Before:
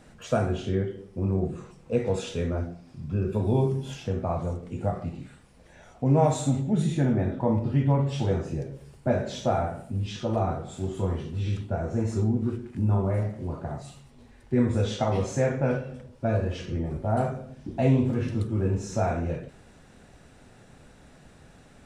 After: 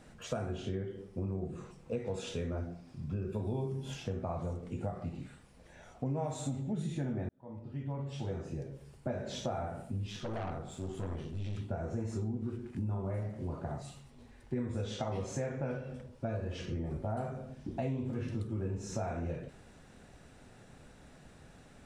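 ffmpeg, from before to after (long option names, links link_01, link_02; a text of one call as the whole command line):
ffmpeg -i in.wav -filter_complex "[0:a]asettb=1/sr,asplit=3[link_01][link_02][link_03];[link_01]atrim=end=10.074[link_04];[link_02]atrim=start=10.07:end=11.57,asetpts=PTS-STARTPTS,afade=type=in:duration=0.004:curve=qsin,afade=type=out:start_time=1.496:duration=0.004:curve=qsin,aeval=exprs='(tanh(28.2*val(0)+0.5)-tanh(0.5))/28.2':channel_layout=same[link_05];[link_03]atrim=start=11.566[link_06];[link_04][link_05]acrossfade=duration=0.004:curve1=hsin:curve2=qsin[link_07];[link_07][link_06]acrossfade=duration=0.004:curve1=qsin:curve2=hsin,asplit=2[link_08][link_09];[link_08]atrim=end=7.29,asetpts=PTS-STARTPTS,afade=type=out:start_time=7.286:duration=0.004:curve=hsin[link_10];[link_09]atrim=start=7.29,asetpts=PTS-STARTPTS,afade=type=in:duration=2.04[link_11];[link_10][link_11]concat=n=2:v=0:a=1,acompressor=threshold=-30dB:ratio=4,volume=-3.5dB" out.wav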